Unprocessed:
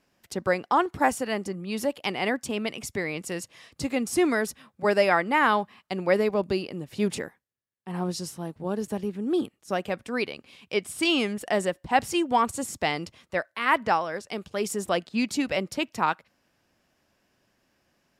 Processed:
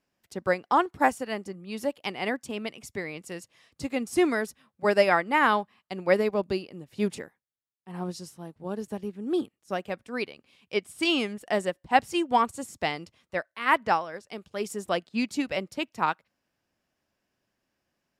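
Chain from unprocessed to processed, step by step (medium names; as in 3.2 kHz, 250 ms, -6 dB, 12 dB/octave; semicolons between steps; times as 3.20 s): upward expansion 1.5:1, over -39 dBFS; trim +1.5 dB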